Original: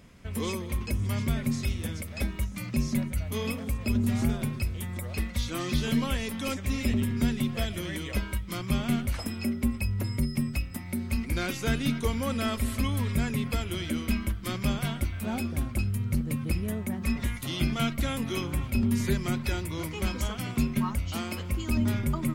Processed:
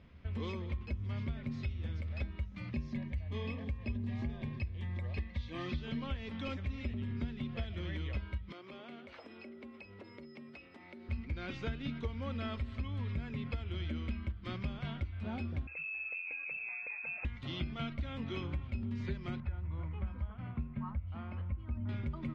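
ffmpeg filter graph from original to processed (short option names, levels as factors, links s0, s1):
-filter_complex "[0:a]asettb=1/sr,asplit=3[s0][s1][s2];[s0]atrim=end=2.724[s3];[s1]atrim=start=2.72:end=5.66,asetpts=PTS-STARTPTS,afade=t=in:d=0.004:c=qsin,afade=t=out:st=2.936:d=0.004:c=qsin,asuperstop=centerf=1400:order=8:qfactor=4.4,equalizer=f=1600:t=o:w=0.43:g=5[s4];[s2]atrim=start=5.656[s5];[s3][s4]acrossfade=d=0.004:c1=hsin:c2=qsin[s6];[s6][s5]acrossfade=d=0.004:c1=qsin:c2=hsin,asettb=1/sr,asplit=3[s7][s8][s9];[s7]atrim=end=8.524[s10];[s8]atrim=start=8.52:end=11.09,asetpts=PTS-STARTPTS,afade=t=in:d=0.004:c=qsin,afade=t=out:st=2.566:d=0.004:c=qsin,highpass=f=400:t=q:w=1.9,acompressor=threshold=0.00794:ratio=3:attack=3.2:release=140:knee=1:detection=peak[s11];[s9]atrim=start=11.086[s12];[s10][s11]acrossfade=d=0.004:c1=hsin:c2=qsin[s13];[s13][s12]acrossfade=d=0.004:c1=qsin:c2=hsin,asettb=1/sr,asplit=3[s14][s15][s16];[s14]atrim=end=15.674[s17];[s15]atrim=start=15.67:end=17.25,asetpts=PTS-STARTPTS,afade=t=in:d=0.004:c=qsin,afade=t=out:st=1.576:d=0.004:c=qsin,acompressor=threshold=0.0251:ratio=3:attack=3.2:release=140:knee=1:detection=peak,lowpass=f=2300:t=q:w=0.5098,lowpass=f=2300:t=q:w=0.6013,lowpass=f=2300:t=q:w=0.9,lowpass=f=2300:t=q:w=2.563,afreqshift=-2700[s18];[s16]atrim=start=17.246[s19];[s17][s18]acrossfade=d=0.004:c1=hsin:c2=qsin[s20];[s20][s19]acrossfade=d=0.004:c1=qsin:c2=hsin,asettb=1/sr,asplit=3[s21][s22][s23];[s21]atrim=end=19.404[s24];[s22]atrim=start=19.4:end=21.89,asetpts=PTS-STARTPTS,afade=t=in:d=0.004:c=qsin,afade=t=out:st=2.486:d=0.004:c=qsin,lowpass=1300,equalizer=f=380:t=o:w=1.2:g=-10.5[s25];[s23]atrim=start=21.886[s26];[s24][s25]acrossfade=d=0.004:c1=hsin:c2=qsin[s27];[s27][s26]acrossfade=d=0.004:c1=qsin:c2=hsin,lowpass=f=4000:w=0.5412,lowpass=f=4000:w=1.3066,equalizer=f=75:t=o:w=0.47:g=13.5,acompressor=threshold=0.0447:ratio=6,volume=0.447"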